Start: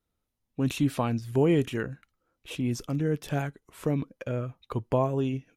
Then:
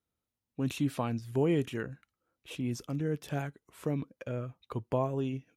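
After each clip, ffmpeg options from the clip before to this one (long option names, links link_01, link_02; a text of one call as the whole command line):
ffmpeg -i in.wav -af "highpass=61,volume=-5dB" out.wav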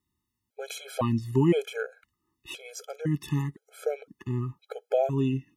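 ffmpeg -i in.wav -af "afftfilt=real='re*gt(sin(2*PI*0.98*pts/sr)*(1-2*mod(floor(b*sr/1024/430),2)),0)':imag='im*gt(sin(2*PI*0.98*pts/sr)*(1-2*mod(floor(b*sr/1024/430),2)),0)':win_size=1024:overlap=0.75,volume=8dB" out.wav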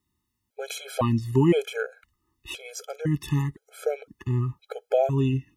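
ffmpeg -i in.wav -af "asubboost=boost=4.5:cutoff=90,volume=3.5dB" out.wav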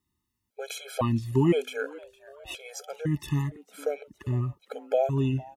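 ffmpeg -i in.wav -filter_complex "[0:a]asplit=4[link_01][link_02][link_03][link_04];[link_02]adelay=459,afreqshift=140,volume=-22dB[link_05];[link_03]adelay=918,afreqshift=280,volume=-28.2dB[link_06];[link_04]adelay=1377,afreqshift=420,volume=-34.4dB[link_07];[link_01][link_05][link_06][link_07]amix=inputs=4:normalize=0,volume=-2.5dB" out.wav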